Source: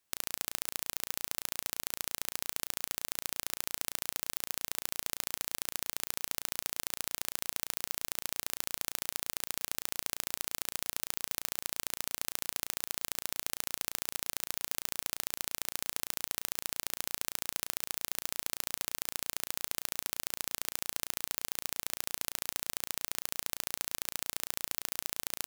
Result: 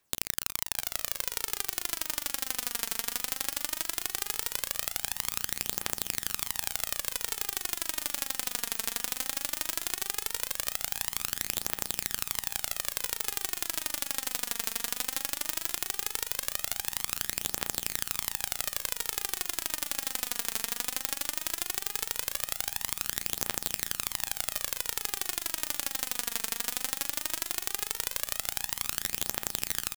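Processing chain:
feedback delay with all-pass diffusion 662 ms, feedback 77%, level −15 dB
phase shifter 0.2 Hz, delay 4.5 ms, feedback 50%
tempo change 0.85×
level +3.5 dB

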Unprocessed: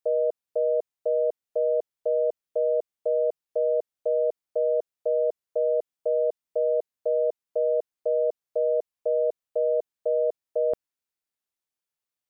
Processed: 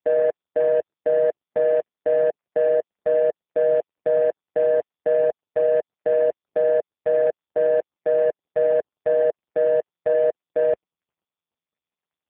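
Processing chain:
running median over 41 samples
high-frequency loss of the air 250 metres
level +8 dB
AMR narrowband 5.15 kbit/s 8,000 Hz

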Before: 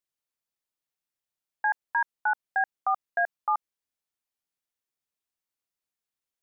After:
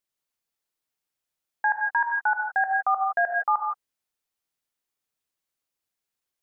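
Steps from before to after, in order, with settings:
reverb whose tail is shaped and stops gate 190 ms rising, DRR 3.5 dB
level +2.5 dB

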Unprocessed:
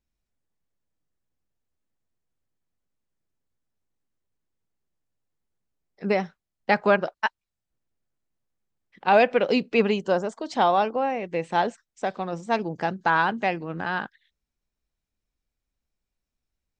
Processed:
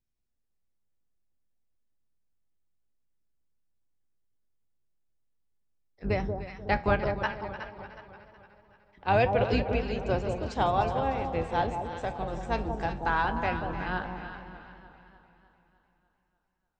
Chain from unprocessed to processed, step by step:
sub-octave generator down 2 octaves, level +3 dB
0:09.60–0:10.06: downward compressor, threshold −22 dBFS, peak gain reduction 9.5 dB
flanger 0.2 Hz, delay 7.6 ms, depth 8 ms, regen +74%
delay that swaps between a low-pass and a high-pass 184 ms, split 970 Hz, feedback 58%, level −5 dB
feedback echo with a swinging delay time 300 ms, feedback 56%, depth 55 cents, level −14 dB
level −2 dB

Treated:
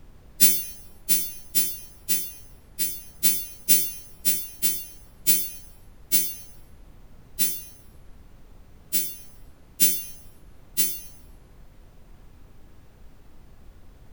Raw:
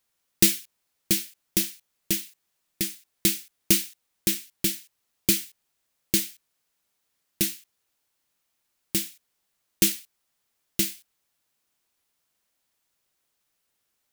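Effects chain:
every partial snapped to a pitch grid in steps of 2 semitones
background noise brown −39 dBFS
four-comb reverb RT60 0.77 s, combs from 33 ms, DRR 9 dB
level −8 dB

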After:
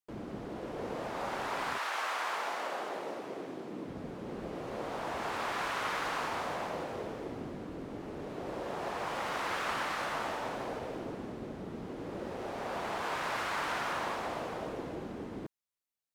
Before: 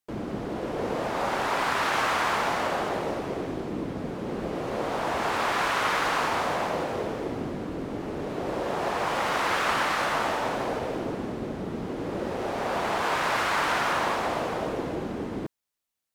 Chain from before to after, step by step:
0:01.77–0:03.87: high-pass filter 660 Hz → 160 Hz 12 dB per octave
level −9 dB

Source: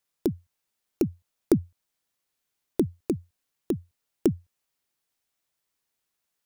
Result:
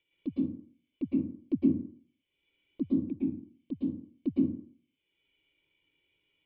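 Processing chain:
low-shelf EQ 420 Hz −10 dB
upward compression, threshold −40 dBFS
soft clipping −18.5 dBFS, distortion −17 dB
formant resonators in series i
flanger swept by the level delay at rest 2.1 ms, full sweep at −33.5 dBFS
dense smooth reverb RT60 0.5 s, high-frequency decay 0.55×, pre-delay 100 ms, DRR −6 dB
level +5 dB

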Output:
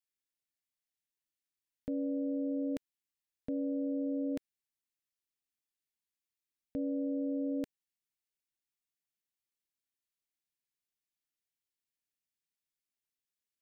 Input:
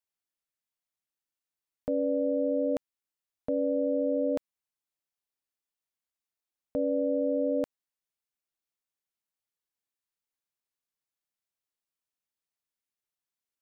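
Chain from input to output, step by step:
flat-topped bell 810 Hz −11.5 dB
level −2.5 dB

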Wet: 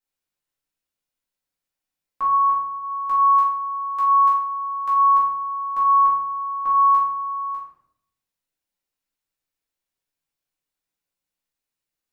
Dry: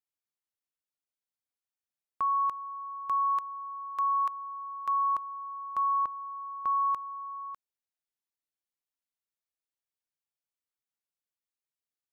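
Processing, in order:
0:02.24–0:02.78: low-pass filter 1,400 Hz → 1,100 Hz 6 dB per octave
rectangular room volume 130 cubic metres, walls mixed, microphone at 2.1 metres

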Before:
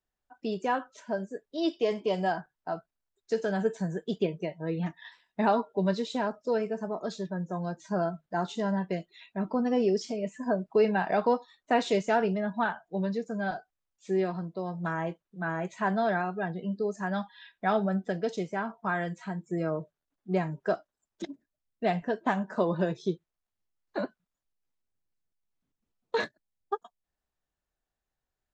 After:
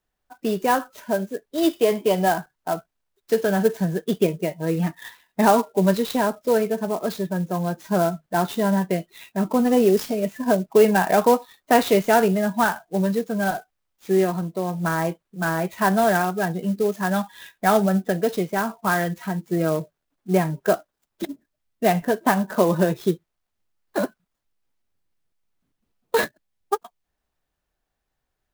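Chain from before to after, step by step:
converter with an unsteady clock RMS 0.032 ms
level +8.5 dB

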